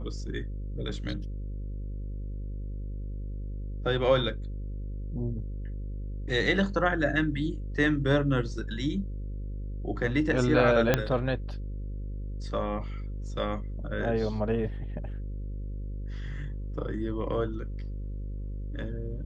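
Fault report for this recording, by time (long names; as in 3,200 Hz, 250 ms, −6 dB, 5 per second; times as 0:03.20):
mains buzz 50 Hz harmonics 11 −35 dBFS
0:10.94: click −8 dBFS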